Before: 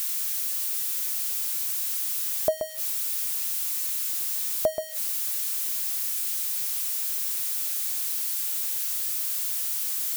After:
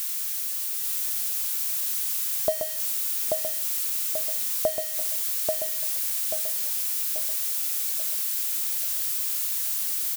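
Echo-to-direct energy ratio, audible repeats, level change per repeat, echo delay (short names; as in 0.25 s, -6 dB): -2.0 dB, 5, -7.0 dB, 0.836 s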